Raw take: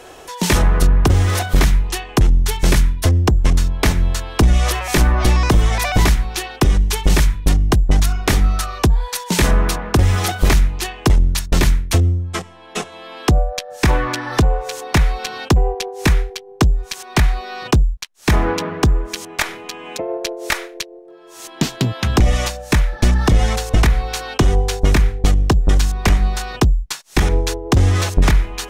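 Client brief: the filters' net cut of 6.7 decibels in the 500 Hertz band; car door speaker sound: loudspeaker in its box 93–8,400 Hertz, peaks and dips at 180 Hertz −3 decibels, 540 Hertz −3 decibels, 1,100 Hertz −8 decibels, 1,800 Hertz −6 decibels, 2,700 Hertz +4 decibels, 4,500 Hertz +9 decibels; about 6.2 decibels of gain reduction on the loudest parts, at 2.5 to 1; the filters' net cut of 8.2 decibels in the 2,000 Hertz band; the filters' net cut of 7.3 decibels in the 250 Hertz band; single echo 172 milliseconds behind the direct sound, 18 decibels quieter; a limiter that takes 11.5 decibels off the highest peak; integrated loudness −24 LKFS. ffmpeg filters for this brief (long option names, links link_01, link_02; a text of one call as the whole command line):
ffmpeg -i in.wav -af "equalizer=frequency=250:width_type=o:gain=-7.5,equalizer=frequency=500:width_type=o:gain=-4,equalizer=frequency=2000:width_type=o:gain=-9,acompressor=threshold=-19dB:ratio=2.5,alimiter=limit=-19dB:level=0:latency=1,highpass=93,equalizer=frequency=180:width_type=q:width=4:gain=-3,equalizer=frequency=540:width_type=q:width=4:gain=-3,equalizer=frequency=1100:width_type=q:width=4:gain=-8,equalizer=frequency=1800:width_type=q:width=4:gain=-6,equalizer=frequency=2700:width_type=q:width=4:gain=4,equalizer=frequency=4500:width_type=q:width=4:gain=9,lowpass=frequency=8400:width=0.5412,lowpass=frequency=8400:width=1.3066,aecho=1:1:172:0.126,volume=7.5dB" out.wav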